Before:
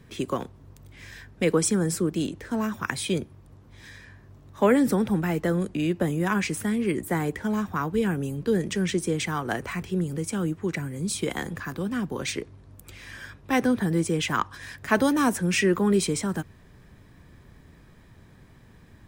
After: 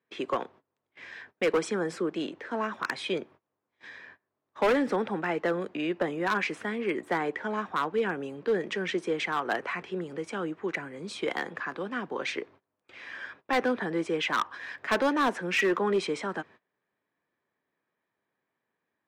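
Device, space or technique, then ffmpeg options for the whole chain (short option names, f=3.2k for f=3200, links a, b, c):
walkie-talkie: -af "highpass=450,lowpass=2.8k,asoftclip=type=hard:threshold=-22.5dB,agate=range=-24dB:threshold=-53dB:ratio=16:detection=peak,volume=2.5dB"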